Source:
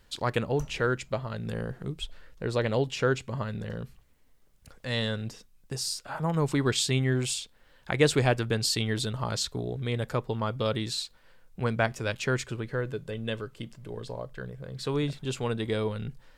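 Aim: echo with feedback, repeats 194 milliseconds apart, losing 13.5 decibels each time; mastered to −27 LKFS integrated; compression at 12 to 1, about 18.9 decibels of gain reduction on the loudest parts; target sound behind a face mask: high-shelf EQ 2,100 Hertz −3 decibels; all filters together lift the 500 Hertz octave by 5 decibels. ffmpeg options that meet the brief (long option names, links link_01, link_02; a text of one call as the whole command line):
ffmpeg -i in.wav -af "equalizer=frequency=500:width_type=o:gain=6,acompressor=threshold=-31dB:ratio=12,highshelf=frequency=2100:gain=-3,aecho=1:1:194|388:0.211|0.0444,volume=10dB" out.wav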